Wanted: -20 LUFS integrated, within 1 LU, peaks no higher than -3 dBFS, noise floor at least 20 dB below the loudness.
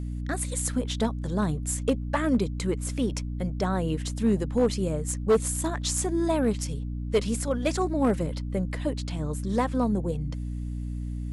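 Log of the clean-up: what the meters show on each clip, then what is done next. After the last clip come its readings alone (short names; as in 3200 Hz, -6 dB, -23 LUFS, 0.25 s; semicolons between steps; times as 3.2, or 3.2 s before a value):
clipped 0.5%; flat tops at -15.5 dBFS; hum 60 Hz; harmonics up to 300 Hz; hum level -30 dBFS; loudness -28.0 LUFS; peak -15.5 dBFS; loudness target -20.0 LUFS
-> clip repair -15.5 dBFS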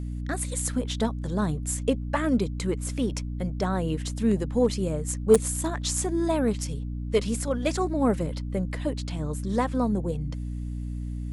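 clipped 0.0%; hum 60 Hz; harmonics up to 300 Hz; hum level -30 dBFS
-> notches 60/120/180/240/300 Hz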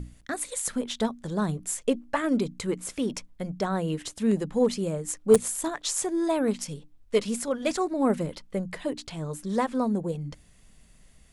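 hum none; loudness -28.0 LUFS; peak -6.0 dBFS; loudness target -20.0 LUFS
-> gain +8 dB; limiter -3 dBFS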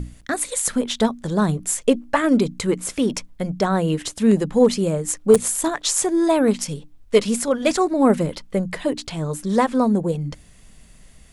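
loudness -20.5 LUFS; peak -3.0 dBFS; noise floor -49 dBFS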